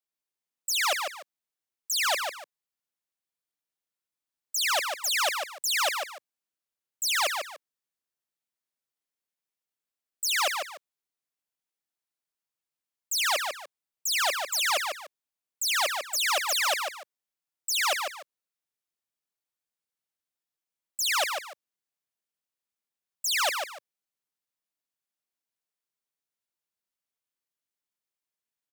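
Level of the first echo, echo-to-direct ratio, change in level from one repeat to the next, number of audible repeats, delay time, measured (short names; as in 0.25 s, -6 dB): -5.0 dB, -4.5 dB, -11.5 dB, 2, 0.147 s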